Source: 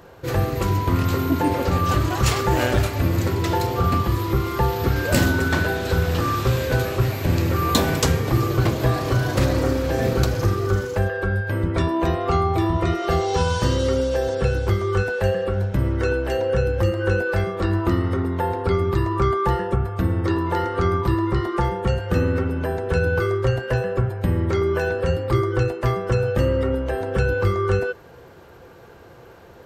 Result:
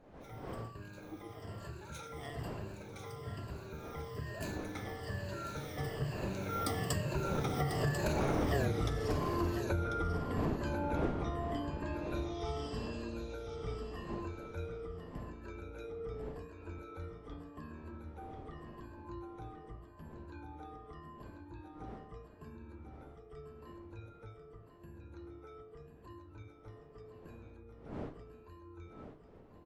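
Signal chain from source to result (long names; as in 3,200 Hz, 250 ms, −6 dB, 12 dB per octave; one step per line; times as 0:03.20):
rippled gain that drifts along the octave scale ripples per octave 1.4, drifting −0.96 Hz, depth 15 dB
wind on the microphone 480 Hz −23 dBFS
source passing by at 0:08.60, 48 m/s, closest 3.9 metres
downward compressor 10 to 1, threshold −41 dBFS, peak gain reduction 24.5 dB
on a send: single-tap delay 1,043 ms −9 dB
on the sum: level +11 dB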